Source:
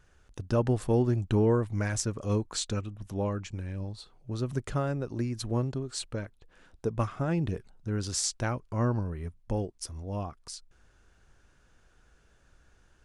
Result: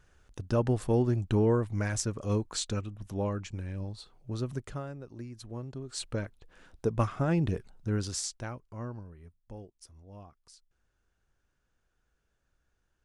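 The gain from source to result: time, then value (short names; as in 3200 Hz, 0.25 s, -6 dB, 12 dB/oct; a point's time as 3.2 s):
4.38 s -1 dB
4.94 s -11 dB
5.61 s -11 dB
6.11 s +1.5 dB
7.94 s +1.5 dB
8.29 s -6.5 dB
9.16 s -14.5 dB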